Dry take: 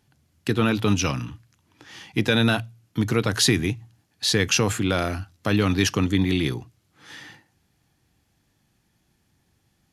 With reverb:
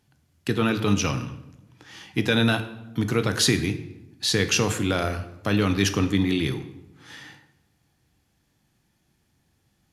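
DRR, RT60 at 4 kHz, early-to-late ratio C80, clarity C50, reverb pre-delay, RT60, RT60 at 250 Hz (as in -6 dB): 9.0 dB, 0.65 s, 14.0 dB, 12.0 dB, 12 ms, 1.0 s, 1.3 s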